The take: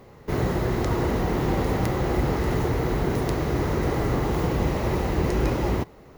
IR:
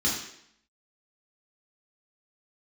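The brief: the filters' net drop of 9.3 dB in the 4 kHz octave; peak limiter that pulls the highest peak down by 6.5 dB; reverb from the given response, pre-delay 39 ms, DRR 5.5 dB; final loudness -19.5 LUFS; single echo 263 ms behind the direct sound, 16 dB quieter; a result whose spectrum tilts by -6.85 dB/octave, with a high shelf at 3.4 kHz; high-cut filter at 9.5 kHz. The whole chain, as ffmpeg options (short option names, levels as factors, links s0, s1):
-filter_complex "[0:a]lowpass=9500,highshelf=f=3400:g=-7.5,equalizer=f=4000:t=o:g=-7,alimiter=limit=0.133:level=0:latency=1,aecho=1:1:263:0.158,asplit=2[s0][s1];[1:a]atrim=start_sample=2205,adelay=39[s2];[s1][s2]afir=irnorm=-1:irlink=0,volume=0.168[s3];[s0][s3]amix=inputs=2:normalize=0,volume=1.88"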